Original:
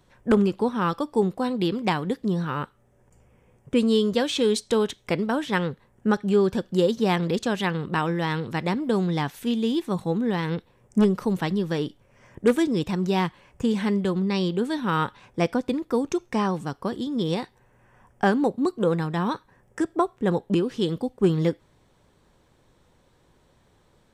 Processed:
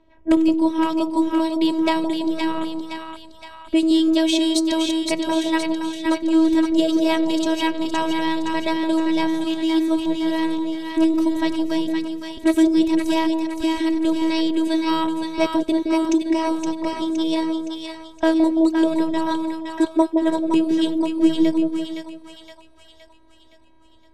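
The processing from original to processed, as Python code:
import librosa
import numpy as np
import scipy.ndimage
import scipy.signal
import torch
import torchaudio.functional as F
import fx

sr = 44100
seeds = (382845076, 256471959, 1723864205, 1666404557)

y = fx.peak_eq(x, sr, hz=1400.0, db=-14.0, octaves=0.48)
y = fx.robotise(y, sr, hz=322.0)
y = fx.env_lowpass(y, sr, base_hz=2200.0, full_db=-24.5)
y = fx.echo_split(y, sr, split_hz=790.0, low_ms=168, high_ms=517, feedback_pct=52, wet_db=-4.0)
y = y * librosa.db_to_amplitude(7.0)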